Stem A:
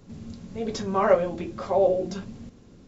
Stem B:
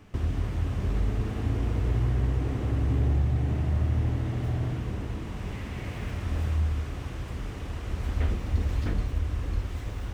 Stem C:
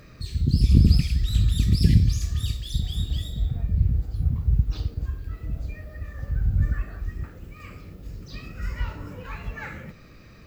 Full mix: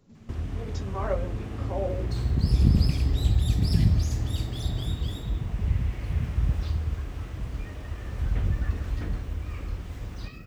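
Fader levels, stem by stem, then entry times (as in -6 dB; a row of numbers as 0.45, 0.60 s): -10.5, -4.0, -4.0 dB; 0.00, 0.15, 1.90 s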